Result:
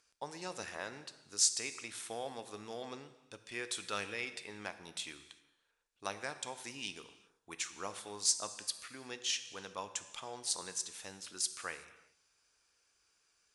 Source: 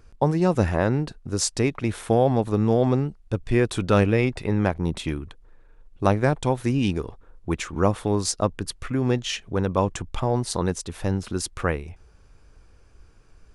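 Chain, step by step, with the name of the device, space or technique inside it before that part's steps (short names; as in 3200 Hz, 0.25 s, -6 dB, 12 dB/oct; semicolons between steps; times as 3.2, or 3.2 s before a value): piezo pickup straight into a mixer (LPF 7700 Hz 12 dB/oct; differentiator); non-linear reverb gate 0.41 s falling, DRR 10 dB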